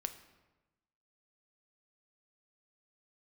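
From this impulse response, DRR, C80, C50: 8.5 dB, 14.0 dB, 12.0 dB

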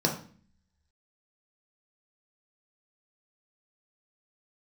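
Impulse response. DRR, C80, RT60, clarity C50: 0.0 dB, 12.5 dB, 0.45 s, 8.0 dB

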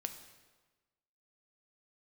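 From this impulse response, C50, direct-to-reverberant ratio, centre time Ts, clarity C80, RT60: 9.5 dB, 6.5 dB, 16 ms, 11.5 dB, 1.3 s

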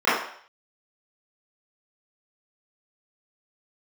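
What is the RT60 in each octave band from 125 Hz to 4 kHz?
0.40 s, 0.45 s, 0.55 s, 0.60 s, 0.60 s, 0.60 s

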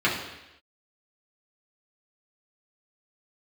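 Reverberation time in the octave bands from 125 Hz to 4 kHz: 0.85 s, 0.90 s, 0.90 s, 0.90 s, 1.0 s, 1.0 s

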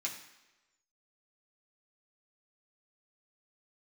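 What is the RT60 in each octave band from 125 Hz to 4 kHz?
0.80 s, 0.95 s, 1.1 s, 1.1 s, 1.1 s, 1.0 s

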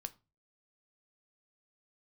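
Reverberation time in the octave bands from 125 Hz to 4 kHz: 0.45 s, 0.40 s, 0.30 s, 0.30 s, 0.25 s, 0.25 s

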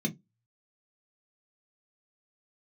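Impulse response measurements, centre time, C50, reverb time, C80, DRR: 9 ms, 22.0 dB, 0.15 s, 32.0 dB, 1.0 dB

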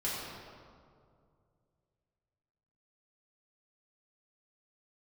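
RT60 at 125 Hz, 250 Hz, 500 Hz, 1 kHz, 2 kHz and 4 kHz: 3.3 s, 2.5 s, 2.4 s, 2.1 s, 1.4 s, 1.2 s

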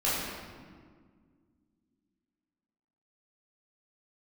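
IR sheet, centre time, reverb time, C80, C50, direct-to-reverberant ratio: 112 ms, 1.8 s, 0.5 dB, -2.0 dB, -10.0 dB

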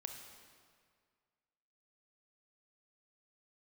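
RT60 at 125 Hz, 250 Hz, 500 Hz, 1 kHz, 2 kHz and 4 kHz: 2.0 s, 1.9 s, 2.0 s, 2.0 s, 1.8 s, 1.5 s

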